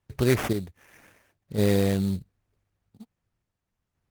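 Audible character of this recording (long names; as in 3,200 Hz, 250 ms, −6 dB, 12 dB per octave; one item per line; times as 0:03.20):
sample-and-hold tremolo 3.8 Hz, depth 55%
aliases and images of a low sample rate 4,200 Hz, jitter 20%
Opus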